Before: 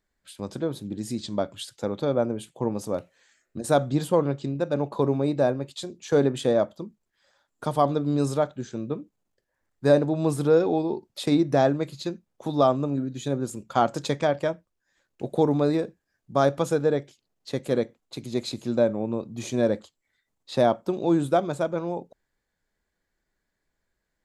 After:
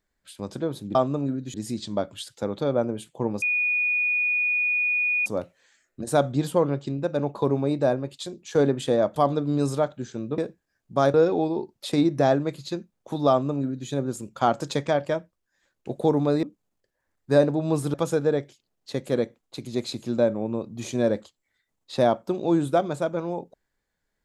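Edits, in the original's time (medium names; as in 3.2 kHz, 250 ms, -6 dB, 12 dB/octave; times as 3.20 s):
2.83 s: add tone 2.46 kHz -20.5 dBFS 1.84 s
6.73–7.75 s: delete
8.97–10.48 s: swap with 15.77–16.53 s
12.64–13.23 s: copy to 0.95 s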